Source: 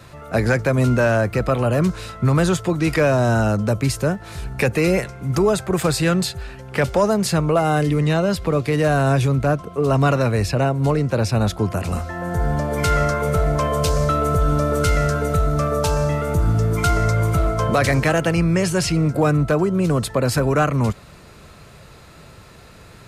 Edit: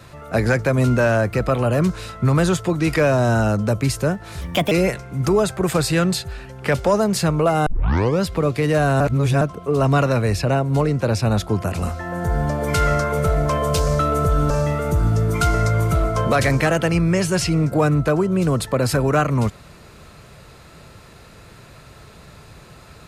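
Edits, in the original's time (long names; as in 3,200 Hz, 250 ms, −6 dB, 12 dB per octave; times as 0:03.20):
0:04.41–0:04.81: play speed 132%
0:07.76: tape start 0.56 s
0:09.10–0:09.51: reverse
0:14.60–0:15.93: remove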